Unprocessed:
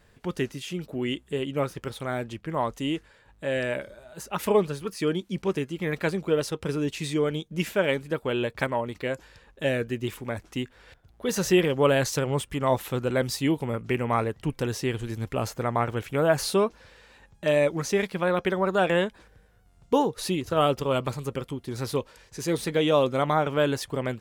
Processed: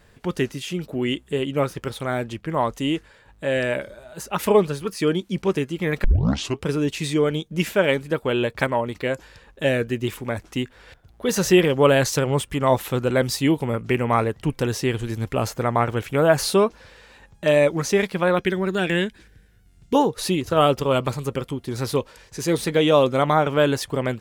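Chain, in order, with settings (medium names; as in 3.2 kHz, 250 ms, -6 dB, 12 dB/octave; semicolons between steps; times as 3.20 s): 6.04 s: tape start 0.60 s; 18.38–19.95 s: high-order bell 790 Hz -11 dB; trim +5 dB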